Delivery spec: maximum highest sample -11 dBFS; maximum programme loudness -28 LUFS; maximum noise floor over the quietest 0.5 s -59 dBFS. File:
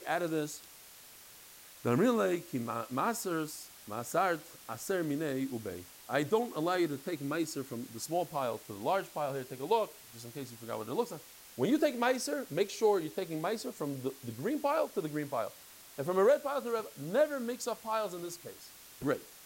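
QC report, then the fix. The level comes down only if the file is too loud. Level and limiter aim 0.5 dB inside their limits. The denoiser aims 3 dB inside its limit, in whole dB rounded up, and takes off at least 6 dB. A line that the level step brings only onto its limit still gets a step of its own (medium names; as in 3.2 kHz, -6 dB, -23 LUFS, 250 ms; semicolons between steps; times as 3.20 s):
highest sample -16.5 dBFS: pass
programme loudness -34.0 LUFS: pass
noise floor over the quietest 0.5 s -54 dBFS: fail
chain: noise reduction 8 dB, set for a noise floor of -54 dBFS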